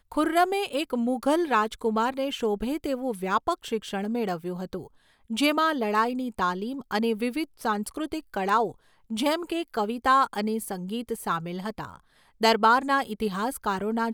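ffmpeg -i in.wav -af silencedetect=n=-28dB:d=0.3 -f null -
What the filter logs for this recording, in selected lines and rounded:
silence_start: 4.77
silence_end: 5.31 | silence_duration: 0.53
silence_start: 8.68
silence_end: 9.11 | silence_duration: 0.44
silence_start: 11.85
silence_end: 12.42 | silence_duration: 0.57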